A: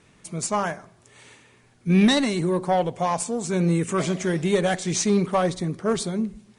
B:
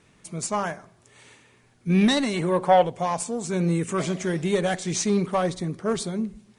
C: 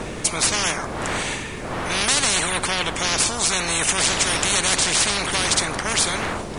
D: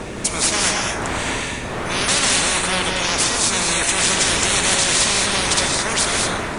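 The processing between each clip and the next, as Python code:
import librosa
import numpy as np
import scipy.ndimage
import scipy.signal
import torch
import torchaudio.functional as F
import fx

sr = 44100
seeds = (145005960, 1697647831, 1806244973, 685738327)

y1 = fx.spec_box(x, sr, start_s=2.34, length_s=0.52, low_hz=410.0, high_hz=3600.0, gain_db=7)
y1 = F.gain(torch.from_numpy(y1), -2.0).numpy()
y2 = fx.dmg_wind(y1, sr, seeds[0], corner_hz=180.0, level_db=-29.0)
y2 = fx.spectral_comp(y2, sr, ratio=10.0)
y2 = F.gain(torch.from_numpy(y2), 2.5).numpy()
y3 = fx.rev_gated(y2, sr, seeds[1], gate_ms=250, shape='rising', drr_db=0.5)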